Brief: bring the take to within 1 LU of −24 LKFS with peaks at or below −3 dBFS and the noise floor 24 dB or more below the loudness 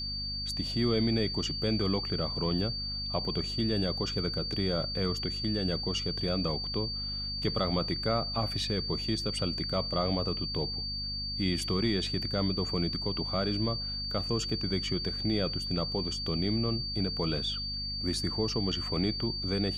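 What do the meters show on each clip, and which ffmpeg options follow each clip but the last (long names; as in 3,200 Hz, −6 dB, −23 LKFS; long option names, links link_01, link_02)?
mains hum 50 Hz; hum harmonics up to 250 Hz; level of the hum −38 dBFS; interfering tone 4,600 Hz; level of the tone −34 dBFS; integrated loudness −30.5 LKFS; sample peak −15.0 dBFS; target loudness −24.0 LKFS
→ -af "bandreject=frequency=50:width_type=h:width=6,bandreject=frequency=100:width_type=h:width=6,bandreject=frequency=150:width_type=h:width=6,bandreject=frequency=200:width_type=h:width=6,bandreject=frequency=250:width_type=h:width=6"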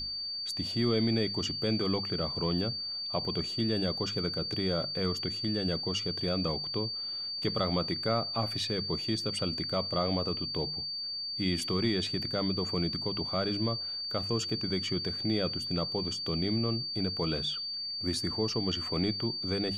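mains hum none found; interfering tone 4,600 Hz; level of the tone −34 dBFS
→ -af "bandreject=frequency=4600:width=30"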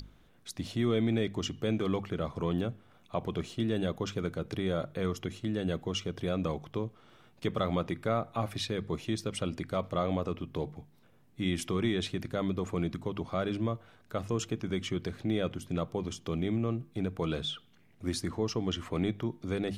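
interfering tone none found; integrated loudness −33.5 LKFS; sample peak −16.0 dBFS; target loudness −24.0 LKFS
→ -af "volume=9.5dB"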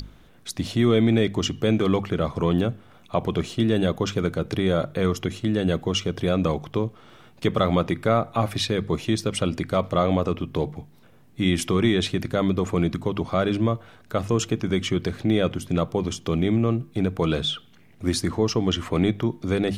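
integrated loudness −24.0 LKFS; sample peak −6.5 dBFS; background noise floor −52 dBFS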